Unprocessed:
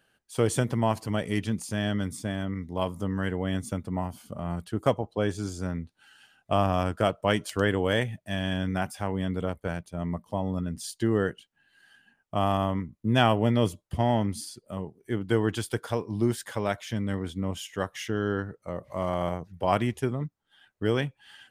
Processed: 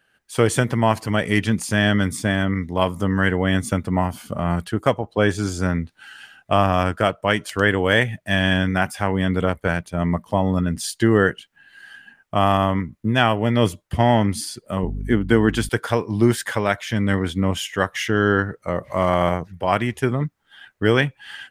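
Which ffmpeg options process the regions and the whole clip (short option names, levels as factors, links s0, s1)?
-filter_complex "[0:a]asettb=1/sr,asplit=3[s0][s1][s2];[s0]atrim=end=14.834[s3];[s1]atrim=start=14.83:end=15.69,asetpts=PTS-STARTPTS,afade=t=in:d=0.004:c=qsin,afade=t=out:st=0.856:d=0.004:c=qsin,equalizer=f=240:w=1.8:g=7.5,aeval=exprs='val(0)+0.0178*(sin(2*PI*50*n/s)+sin(2*PI*2*50*n/s)/2+sin(2*PI*3*50*n/s)/3+sin(2*PI*4*50*n/s)/4+sin(2*PI*5*50*n/s)/5)':c=same[s4];[s2]atrim=start=15.686[s5];[s3][s4]acrossfade=d=0.004:c1=hsin:c2=qsin[s6];[s6][s5]acrossfade=d=0.004:c1=qsin:c2=hsin,equalizer=f=1800:w=1.1:g=6.5,dynaudnorm=f=130:g=3:m=3.55,volume=0.891"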